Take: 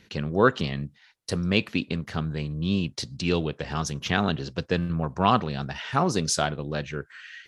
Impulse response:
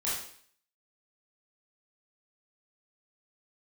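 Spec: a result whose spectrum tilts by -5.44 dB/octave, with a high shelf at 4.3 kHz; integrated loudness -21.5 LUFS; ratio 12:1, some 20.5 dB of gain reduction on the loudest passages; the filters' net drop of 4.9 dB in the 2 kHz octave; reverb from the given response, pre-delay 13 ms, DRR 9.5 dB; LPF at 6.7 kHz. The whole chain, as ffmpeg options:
-filter_complex "[0:a]lowpass=6700,equalizer=f=2000:t=o:g=-6,highshelf=f=4300:g=-5,acompressor=threshold=0.0158:ratio=12,asplit=2[s0][s1];[1:a]atrim=start_sample=2205,adelay=13[s2];[s1][s2]afir=irnorm=-1:irlink=0,volume=0.158[s3];[s0][s3]amix=inputs=2:normalize=0,volume=9.44"

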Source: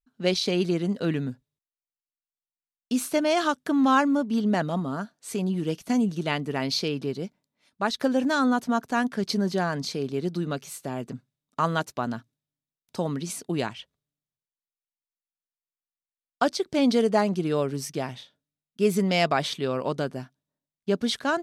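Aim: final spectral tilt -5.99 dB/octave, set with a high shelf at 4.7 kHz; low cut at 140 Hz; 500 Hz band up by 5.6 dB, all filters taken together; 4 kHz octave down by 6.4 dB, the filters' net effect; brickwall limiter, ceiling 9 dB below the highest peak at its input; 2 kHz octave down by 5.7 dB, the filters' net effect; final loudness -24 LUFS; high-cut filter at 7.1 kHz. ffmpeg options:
-af "highpass=140,lowpass=7100,equalizer=f=500:t=o:g=7.5,equalizer=f=2000:t=o:g=-8,equalizer=f=4000:t=o:g=-8,highshelf=f=4700:g=5.5,volume=1.33,alimiter=limit=0.224:level=0:latency=1"

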